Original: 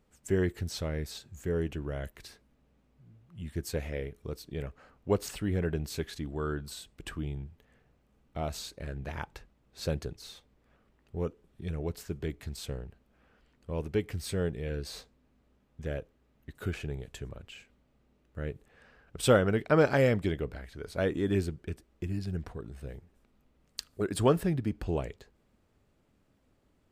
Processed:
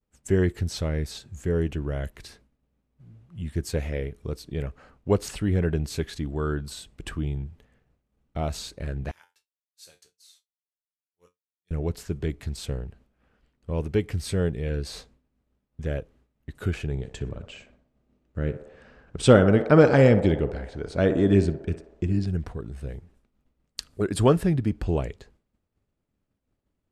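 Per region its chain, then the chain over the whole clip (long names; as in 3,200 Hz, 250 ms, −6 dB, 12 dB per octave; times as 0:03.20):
0:09.11–0:11.71: first difference + tuned comb filter 89 Hz, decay 0.31 s, mix 80%
0:16.93–0:22.27: low-pass filter 8,700 Hz 24 dB per octave + parametric band 250 Hz +4 dB 2 octaves + feedback echo with a band-pass in the loop 61 ms, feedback 79%, band-pass 750 Hz, level −9 dB
whole clip: downward expander −58 dBFS; low-pass filter 12,000 Hz 24 dB per octave; low-shelf EQ 220 Hz +4.5 dB; level +4 dB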